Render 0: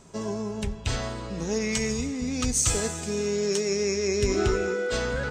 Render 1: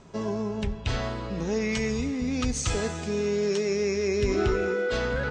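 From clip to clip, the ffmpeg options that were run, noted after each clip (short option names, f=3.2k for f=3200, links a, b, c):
-filter_complex "[0:a]lowpass=4.2k,asplit=2[a][b];[b]alimiter=limit=-22dB:level=0:latency=1,volume=-3dB[c];[a][c]amix=inputs=2:normalize=0,volume=-3dB"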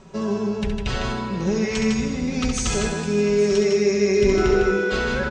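-af "aecho=1:1:5.3:0.55,aecho=1:1:68|154|844:0.447|0.596|0.178,volume=2.5dB"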